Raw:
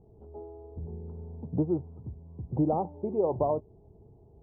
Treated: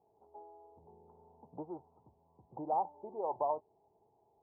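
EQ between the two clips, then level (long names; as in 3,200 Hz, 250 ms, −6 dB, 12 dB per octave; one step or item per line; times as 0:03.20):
resonant band-pass 890 Hz, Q 3.7
+2.0 dB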